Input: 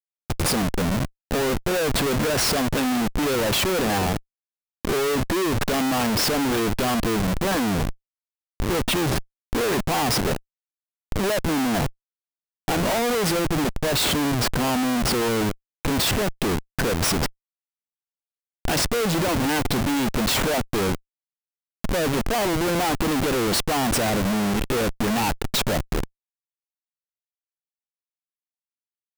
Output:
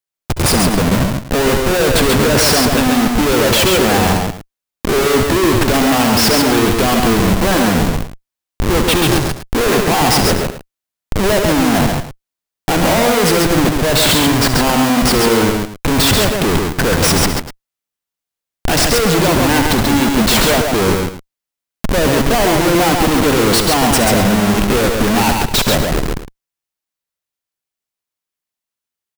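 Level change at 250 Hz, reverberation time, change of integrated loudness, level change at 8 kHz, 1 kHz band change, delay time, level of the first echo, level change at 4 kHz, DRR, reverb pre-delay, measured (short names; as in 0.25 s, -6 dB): +10.0 dB, none, +10.0 dB, +10.0 dB, +10.0 dB, 67 ms, -10.5 dB, +10.0 dB, none, none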